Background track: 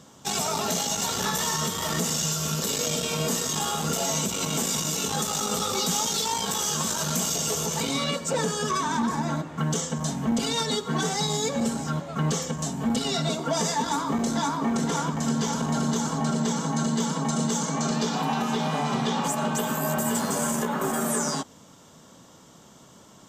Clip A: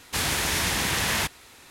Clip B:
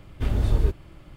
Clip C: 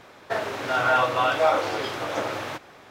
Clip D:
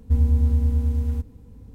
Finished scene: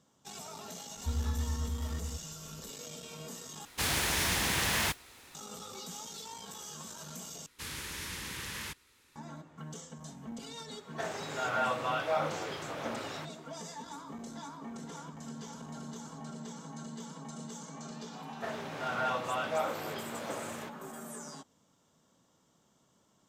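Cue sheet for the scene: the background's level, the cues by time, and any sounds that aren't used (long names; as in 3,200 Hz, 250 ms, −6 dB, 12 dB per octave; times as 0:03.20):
background track −18.5 dB
0:00.96: mix in D −7.5 dB + low-shelf EQ 260 Hz −8 dB
0:03.65: overwrite with A −5 dB + noise that follows the level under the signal 14 dB
0:07.46: overwrite with A −15 dB + parametric band 700 Hz −15 dB 0.36 octaves
0:10.68: mix in C −10.5 dB
0:18.12: mix in C −12 dB
not used: B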